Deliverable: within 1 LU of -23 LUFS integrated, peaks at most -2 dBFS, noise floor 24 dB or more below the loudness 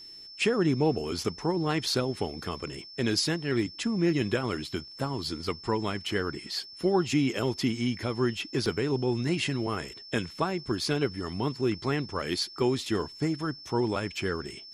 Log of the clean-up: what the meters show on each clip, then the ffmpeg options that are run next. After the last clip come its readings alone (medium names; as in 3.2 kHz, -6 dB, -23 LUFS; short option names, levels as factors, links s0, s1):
steady tone 5.3 kHz; tone level -44 dBFS; loudness -29.5 LUFS; peak level -14.0 dBFS; loudness target -23.0 LUFS
-> -af "bandreject=f=5300:w=30"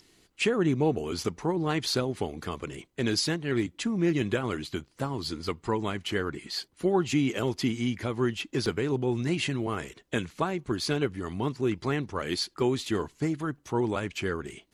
steady tone not found; loudness -29.5 LUFS; peak level -14.0 dBFS; loudness target -23.0 LUFS
-> -af "volume=2.11"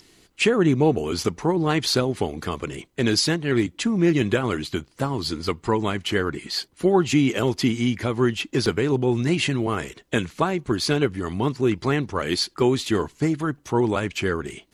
loudness -23.0 LUFS; peak level -7.5 dBFS; noise floor -60 dBFS